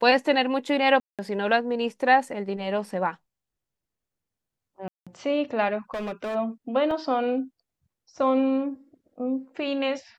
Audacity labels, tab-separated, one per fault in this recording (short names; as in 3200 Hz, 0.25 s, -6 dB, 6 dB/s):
1.000000	1.190000	gap 0.187 s
4.880000	5.070000	gap 0.186 s
5.940000	6.360000	clipped -27.5 dBFS
6.910000	6.910000	gap 2.3 ms